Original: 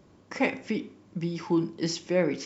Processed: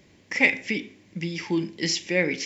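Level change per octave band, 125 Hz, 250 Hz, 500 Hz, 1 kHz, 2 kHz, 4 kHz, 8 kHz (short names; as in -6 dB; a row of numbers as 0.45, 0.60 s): 0.0 dB, 0.0 dB, -0.5 dB, -2.5 dB, +11.5 dB, +8.0 dB, n/a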